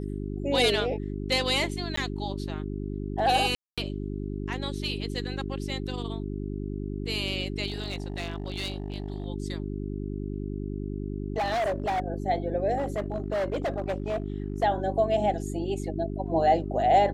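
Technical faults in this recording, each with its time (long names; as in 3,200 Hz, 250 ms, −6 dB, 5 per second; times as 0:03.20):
mains hum 50 Hz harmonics 8 −33 dBFS
0:01.96–0:01.97: drop-out 14 ms
0:03.55–0:03.78: drop-out 226 ms
0:07.67–0:09.26: clipping −27.5 dBFS
0:11.37–0:12.00: clipping −24 dBFS
0:12.77–0:14.64: clipping −24.5 dBFS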